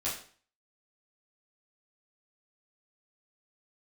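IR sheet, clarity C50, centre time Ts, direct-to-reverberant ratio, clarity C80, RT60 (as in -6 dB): 5.0 dB, 36 ms, -9.5 dB, 10.0 dB, 0.45 s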